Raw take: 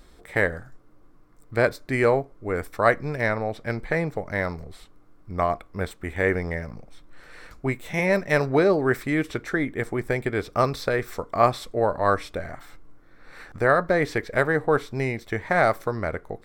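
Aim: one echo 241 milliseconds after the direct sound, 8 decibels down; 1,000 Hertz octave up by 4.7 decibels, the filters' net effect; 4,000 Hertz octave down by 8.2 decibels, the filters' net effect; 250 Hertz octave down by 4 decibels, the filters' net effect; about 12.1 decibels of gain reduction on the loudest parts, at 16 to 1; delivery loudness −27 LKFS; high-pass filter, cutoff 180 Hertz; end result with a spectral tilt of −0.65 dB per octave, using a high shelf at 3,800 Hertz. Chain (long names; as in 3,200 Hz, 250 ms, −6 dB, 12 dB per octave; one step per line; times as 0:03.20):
high-pass filter 180 Hz
parametric band 250 Hz −5 dB
parametric band 1,000 Hz +7.5 dB
high-shelf EQ 3,800 Hz −5.5 dB
parametric band 4,000 Hz −7 dB
downward compressor 16 to 1, threshold −20 dBFS
single-tap delay 241 ms −8 dB
level +1 dB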